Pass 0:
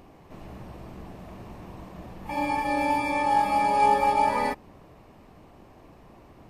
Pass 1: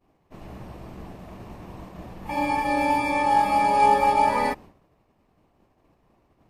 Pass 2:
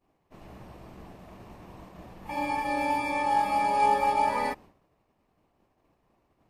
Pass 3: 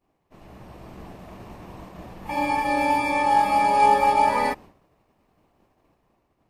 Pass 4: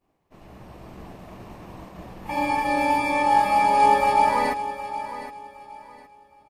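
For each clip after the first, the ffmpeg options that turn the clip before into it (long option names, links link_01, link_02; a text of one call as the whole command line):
ffmpeg -i in.wav -af "agate=range=-33dB:threshold=-40dB:ratio=3:detection=peak,volume=2.5dB" out.wav
ffmpeg -i in.wav -af "lowshelf=frequency=350:gain=-3.5,volume=-4.5dB" out.wav
ffmpeg -i in.wav -af "dynaudnorm=framelen=160:gausssize=9:maxgain=6dB" out.wav
ffmpeg -i in.wav -af "aecho=1:1:765|1530|2295:0.237|0.064|0.0173" out.wav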